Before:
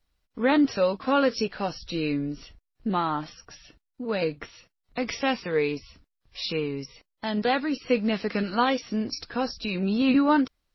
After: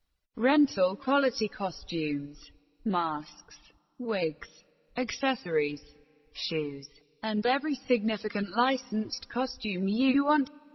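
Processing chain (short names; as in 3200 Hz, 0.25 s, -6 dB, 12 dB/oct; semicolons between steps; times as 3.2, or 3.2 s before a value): Schroeder reverb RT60 2.6 s, combs from 30 ms, DRR 16.5 dB; reverb removal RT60 1.5 s; gain -2 dB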